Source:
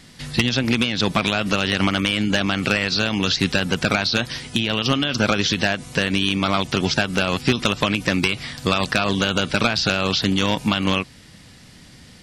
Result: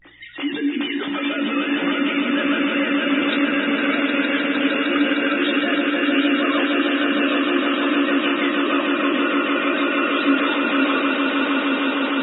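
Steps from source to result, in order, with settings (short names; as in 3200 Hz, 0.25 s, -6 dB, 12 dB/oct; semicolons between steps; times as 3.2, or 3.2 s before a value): sine-wave speech; reverse; compressor 8:1, threshold -29 dBFS, peak gain reduction 17 dB; reverse; limiter -27.5 dBFS, peak gain reduction 7 dB; vibrato 0.41 Hz 85 cents; hum 60 Hz, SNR 35 dB; vibrato 1.1 Hz 10 cents; swelling echo 0.153 s, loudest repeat 8, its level -6 dB; on a send at -1 dB: reverb RT60 1.2 s, pre-delay 3 ms; on the sum: gain +5.5 dB; MP3 16 kbps 22050 Hz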